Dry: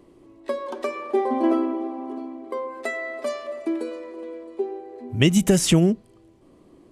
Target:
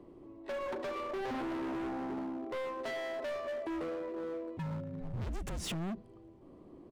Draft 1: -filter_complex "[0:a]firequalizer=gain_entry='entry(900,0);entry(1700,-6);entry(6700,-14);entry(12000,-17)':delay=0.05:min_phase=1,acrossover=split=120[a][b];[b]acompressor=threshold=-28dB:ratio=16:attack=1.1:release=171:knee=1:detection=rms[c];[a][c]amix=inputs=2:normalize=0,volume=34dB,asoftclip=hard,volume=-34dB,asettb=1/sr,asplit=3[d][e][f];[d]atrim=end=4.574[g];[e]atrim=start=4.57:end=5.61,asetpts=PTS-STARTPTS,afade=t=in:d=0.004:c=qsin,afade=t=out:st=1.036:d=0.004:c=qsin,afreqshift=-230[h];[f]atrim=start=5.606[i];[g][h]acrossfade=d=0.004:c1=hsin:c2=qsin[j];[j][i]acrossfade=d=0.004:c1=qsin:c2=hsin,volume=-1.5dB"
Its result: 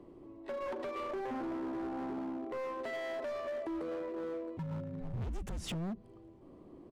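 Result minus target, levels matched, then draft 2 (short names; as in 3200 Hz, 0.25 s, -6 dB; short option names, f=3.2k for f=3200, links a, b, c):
compressor: peak gain reduction +6.5 dB
-filter_complex "[0:a]firequalizer=gain_entry='entry(900,0);entry(1700,-6);entry(6700,-14);entry(12000,-17)':delay=0.05:min_phase=1,acrossover=split=120[a][b];[b]acompressor=threshold=-21dB:ratio=16:attack=1.1:release=171:knee=1:detection=rms[c];[a][c]amix=inputs=2:normalize=0,volume=34dB,asoftclip=hard,volume=-34dB,asettb=1/sr,asplit=3[d][e][f];[d]atrim=end=4.574[g];[e]atrim=start=4.57:end=5.61,asetpts=PTS-STARTPTS,afade=t=in:d=0.004:c=qsin,afade=t=out:st=1.036:d=0.004:c=qsin,afreqshift=-230[h];[f]atrim=start=5.606[i];[g][h]acrossfade=d=0.004:c1=hsin:c2=qsin[j];[j][i]acrossfade=d=0.004:c1=qsin:c2=hsin,volume=-1.5dB"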